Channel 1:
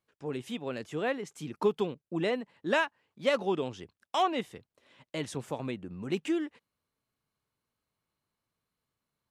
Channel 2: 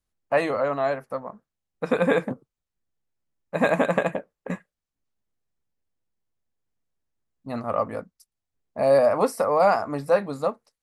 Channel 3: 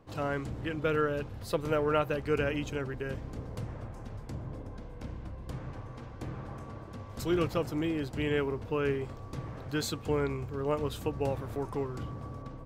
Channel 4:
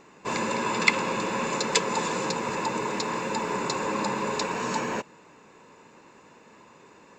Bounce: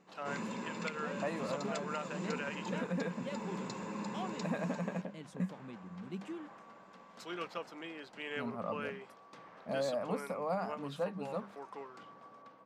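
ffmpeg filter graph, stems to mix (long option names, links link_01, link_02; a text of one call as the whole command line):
ffmpeg -i stem1.wav -i stem2.wav -i stem3.wav -i stem4.wav -filter_complex "[0:a]volume=-16.5dB[link_01];[1:a]adelay=900,volume=-15dB[link_02];[2:a]highpass=760,adynamicsmooth=sensitivity=3.5:basefreq=5800,volume=-4dB[link_03];[3:a]volume=-16.5dB[link_04];[link_01][link_02][link_03][link_04]amix=inputs=4:normalize=0,equalizer=frequency=190:width_type=o:width=0.56:gain=15,bandreject=frequency=50:width_type=h:width=6,bandreject=frequency=100:width_type=h:width=6,bandreject=frequency=150:width_type=h:width=6,bandreject=frequency=200:width_type=h:width=6,alimiter=level_in=2dB:limit=-24dB:level=0:latency=1:release=344,volume=-2dB" out.wav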